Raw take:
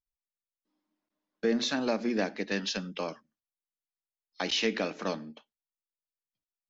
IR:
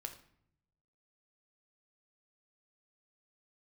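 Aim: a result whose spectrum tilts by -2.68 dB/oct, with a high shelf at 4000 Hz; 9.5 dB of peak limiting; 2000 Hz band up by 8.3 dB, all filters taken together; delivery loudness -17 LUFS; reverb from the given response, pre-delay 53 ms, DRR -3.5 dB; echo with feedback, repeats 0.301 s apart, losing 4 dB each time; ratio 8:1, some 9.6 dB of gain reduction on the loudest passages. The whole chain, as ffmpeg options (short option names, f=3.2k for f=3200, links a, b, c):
-filter_complex "[0:a]equalizer=f=2k:t=o:g=8.5,highshelf=f=4k:g=8,acompressor=threshold=-30dB:ratio=8,alimiter=level_in=0.5dB:limit=-24dB:level=0:latency=1,volume=-0.5dB,aecho=1:1:301|602|903|1204|1505|1806|2107|2408|2709:0.631|0.398|0.25|0.158|0.0994|0.0626|0.0394|0.0249|0.0157,asplit=2[a][b];[1:a]atrim=start_sample=2205,adelay=53[c];[b][c]afir=irnorm=-1:irlink=0,volume=6.5dB[d];[a][d]amix=inputs=2:normalize=0,volume=14dB"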